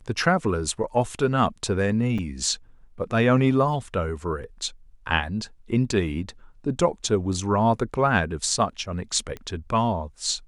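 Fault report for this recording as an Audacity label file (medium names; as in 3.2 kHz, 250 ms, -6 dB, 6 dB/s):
2.180000	2.190000	dropout 5.3 ms
9.370000	9.370000	pop -22 dBFS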